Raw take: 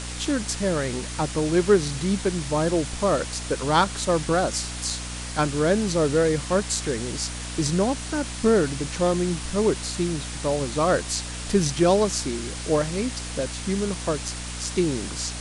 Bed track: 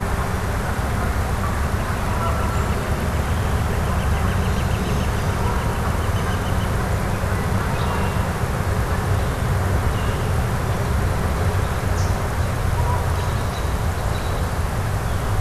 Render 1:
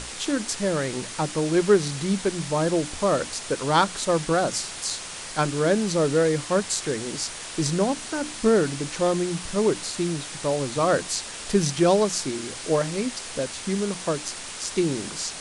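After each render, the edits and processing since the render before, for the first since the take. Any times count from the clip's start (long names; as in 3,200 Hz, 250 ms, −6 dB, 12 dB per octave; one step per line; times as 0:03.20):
mains-hum notches 60/120/180/240/300 Hz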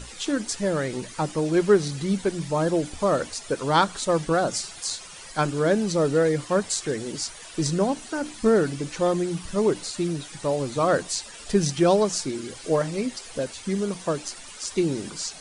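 broadband denoise 12 dB, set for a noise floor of −37 dBFS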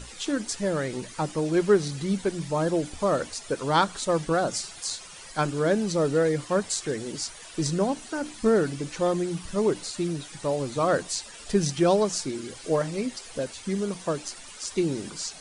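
level −2 dB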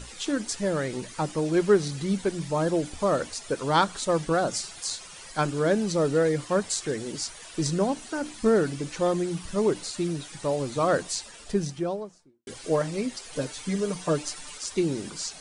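0:11.08–0:12.47: fade out and dull
0:13.32–0:14.58: comb filter 6.7 ms, depth 84%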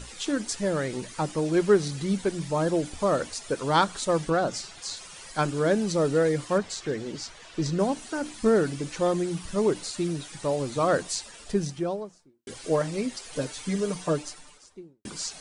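0:04.30–0:04.97: high-frequency loss of the air 59 metres
0:06.58–0:07.79: high-frequency loss of the air 93 metres
0:13.92–0:15.05: fade out and dull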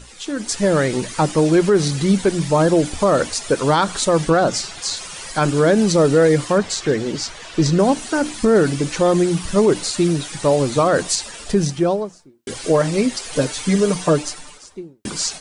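brickwall limiter −18 dBFS, peak gain reduction 9 dB
automatic gain control gain up to 11.5 dB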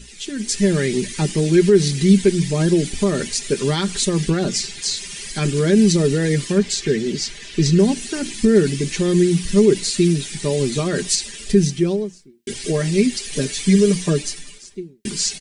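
flat-topped bell 870 Hz −14 dB
comb filter 5 ms, depth 55%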